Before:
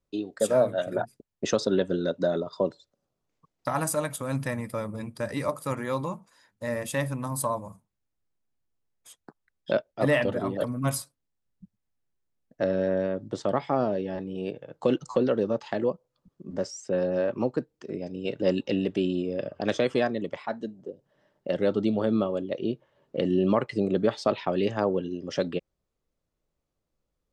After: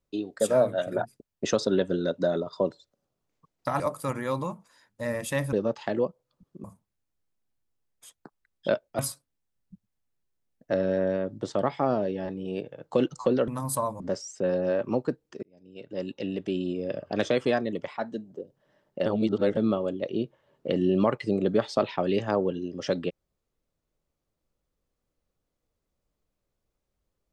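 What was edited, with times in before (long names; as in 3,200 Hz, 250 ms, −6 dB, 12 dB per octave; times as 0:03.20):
0:03.80–0:05.42: remove
0:07.15–0:07.67: swap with 0:15.38–0:16.49
0:10.02–0:10.89: remove
0:17.92–0:19.51: fade in
0:21.55–0:22.06: reverse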